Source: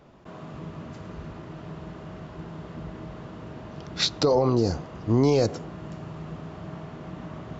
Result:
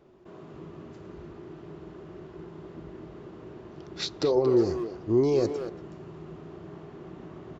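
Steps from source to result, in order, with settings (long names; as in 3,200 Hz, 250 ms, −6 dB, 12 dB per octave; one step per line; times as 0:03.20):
parametric band 370 Hz +14.5 dB 0.37 octaves
far-end echo of a speakerphone 230 ms, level −7 dB
level −8.5 dB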